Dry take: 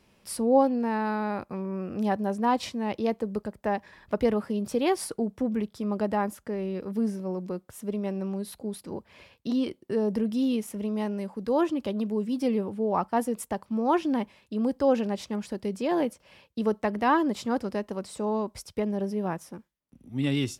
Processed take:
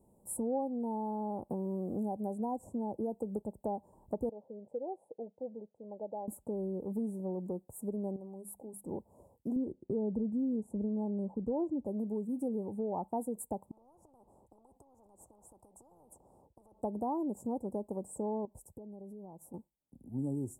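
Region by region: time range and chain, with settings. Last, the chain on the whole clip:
1.5–3.42 Chebyshev band-stop 960–6300 Hz + three-band squash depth 70%
4.29–6.28 band-pass 500 Hz, Q 5.1 + comb 1.2 ms, depth 49%
8.16–8.84 compressor 3:1, threshold -37 dBFS + low shelf 330 Hz -8 dB + notches 50/100/150/200/250 Hz
9.56–11.86 LPF 7900 Hz + tilt -2.5 dB/oct
13.71–16.82 LPF 1400 Hz 6 dB/oct + compressor 16:1, threshold -35 dBFS + spectral compressor 10:1
18.45–19.54 bell 9400 Hz -5 dB 0.23 oct + compressor 16:1, threshold -42 dBFS
whole clip: Chebyshev band-stop 880–7800 Hz, order 4; compressor 3:1, threshold -32 dBFS; gain -2 dB

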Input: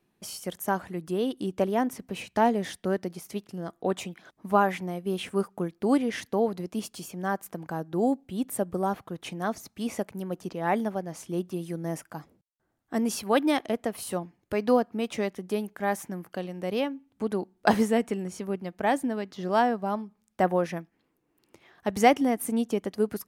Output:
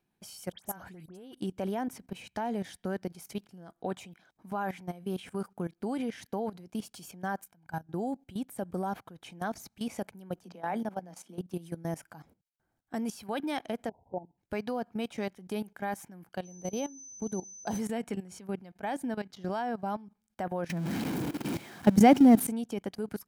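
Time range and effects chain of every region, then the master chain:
0.52–1.35 compressor 12:1, threshold -29 dBFS + dispersion highs, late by 74 ms, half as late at 2200 Hz
7.44–7.87 bell 570 Hz -6 dB 1.1 oct + level quantiser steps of 17 dB + comb 1.3 ms, depth 45%
10.44–11.5 AM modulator 120 Hz, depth 20% + rippled Chebyshev high-pass 170 Hz, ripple 3 dB
13.89–14.38 brick-wall FIR low-pass 1000 Hz + bell 200 Hz -8.5 dB 0.75 oct
16.44–17.78 bell 1900 Hz -10.5 dB 2.2 oct + whine 6100 Hz -41 dBFS + mismatched tape noise reduction decoder only
20.69–22.47 zero-crossing step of -32 dBFS + HPF 95 Hz + bell 210 Hz +12.5 dB 2.1 oct
whole clip: bell 610 Hz -3 dB 0.26 oct; comb 1.3 ms, depth 30%; level quantiser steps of 16 dB

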